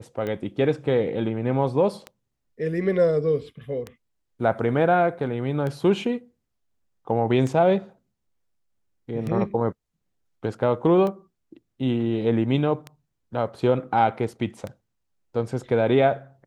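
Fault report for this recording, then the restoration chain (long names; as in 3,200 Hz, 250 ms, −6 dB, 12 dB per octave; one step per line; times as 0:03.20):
scratch tick 33 1/3 rpm −19 dBFS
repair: click removal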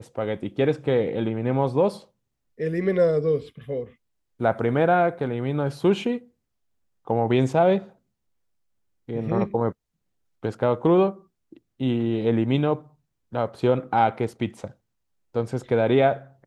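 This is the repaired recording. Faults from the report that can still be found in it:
none of them is left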